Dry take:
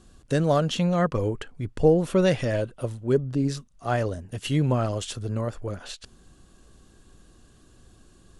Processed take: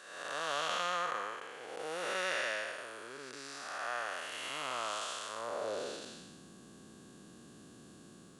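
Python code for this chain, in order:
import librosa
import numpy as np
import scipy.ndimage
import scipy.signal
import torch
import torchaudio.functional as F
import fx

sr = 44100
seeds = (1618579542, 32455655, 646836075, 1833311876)

y = fx.spec_blur(x, sr, span_ms=449.0)
y = fx.filter_sweep_highpass(y, sr, from_hz=1300.0, to_hz=190.0, start_s=5.26, end_s=6.24, q=1.6)
y = F.gain(torch.from_numpy(y), 3.0).numpy()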